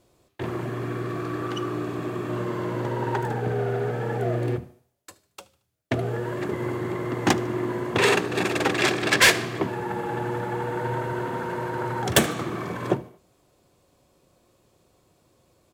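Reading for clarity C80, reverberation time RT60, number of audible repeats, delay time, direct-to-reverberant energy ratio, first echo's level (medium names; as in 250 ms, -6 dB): no reverb, no reverb, 2, 75 ms, no reverb, -22.5 dB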